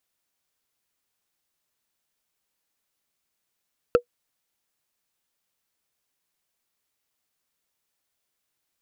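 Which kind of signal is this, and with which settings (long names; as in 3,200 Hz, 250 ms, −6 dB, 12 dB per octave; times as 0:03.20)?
struck wood, lowest mode 484 Hz, decay 0.09 s, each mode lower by 7 dB, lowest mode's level −8 dB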